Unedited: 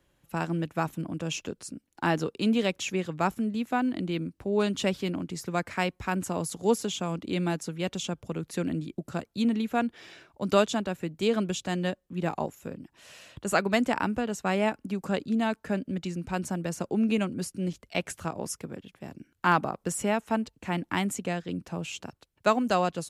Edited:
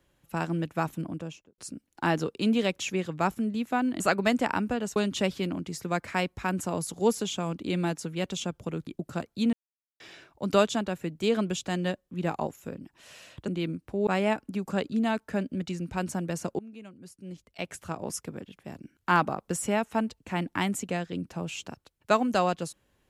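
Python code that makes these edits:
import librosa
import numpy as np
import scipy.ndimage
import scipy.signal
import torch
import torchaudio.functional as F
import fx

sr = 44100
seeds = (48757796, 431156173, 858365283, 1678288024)

y = fx.studio_fade_out(x, sr, start_s=1.0, length_s=0.58)
y = fx.edit(y, sr, fx.swap(start_s=4.0, length_s=0.59, other_s=13.47, other_length_s=0.96),
    fx.cut(start_s=8.5, length_s=0.36),
    fx.silence(start_s=9.52, length_s=0.47),
    fx.fade_in_from(start_s=16.95, length_s=1.5, curve='qua', floor_db=-21.0), tone=tone)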